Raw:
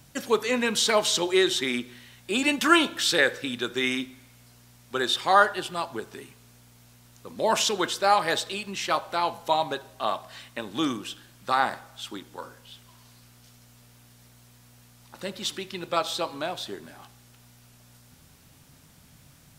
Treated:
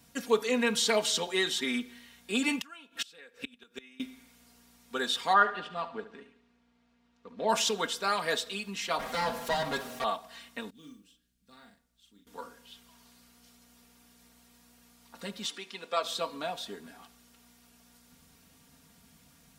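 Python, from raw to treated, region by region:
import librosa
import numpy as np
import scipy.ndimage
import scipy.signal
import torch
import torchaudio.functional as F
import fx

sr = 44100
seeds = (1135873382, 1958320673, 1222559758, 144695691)

y = fx.chain(x, sr, fx.peak_eq(hz=2600.0, db=8.5, octaves=0.27),
    fx.gate_flip(shuts_db=-16.0, range_db=-27), at=(2.52, 4.0))
y = fx.chain(y, sr, fx.law_mismatch(coded='A'),
    fx.lowpass(hz=3000.0, slope=12),
    fx.echo_feedback(ms=71, feedback_pct=52, wet_db=-13.5), at=(5.33, 7.49))
y = fx.chain(y, sr, fx.lower_of_two(delay_ms=7.9),
    fx.env_flatten(amount_pct=50), at=(8.99, 10.04))
y = fx.chain(y, sr, fx.tone_stack(knobs='10-0-1'),
    fx.mod_noise(seeds[0], snr_db=23),
    fx.doubler(ms=39.0, db=-5), at=(10.7, 12.27))
y = fx.chain(y, sr, fx.highpass(hz=340.0, slope=12),
    fx.peak_eq(hz=14000.0, db=-14.5, octaves=0.39), at=(15.46, 16.03))
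y = scipy.signal.sosfilt(scipy.signal.butter(2, 43.0, 'highpass', fs=sr, output='sos'), y)
y = y + 0.81 * np.pad(y, (int(4.3 * sr / 1000.0), 0))[:len(y)]
y = y * librosa.db_to_amplitude(-6.5)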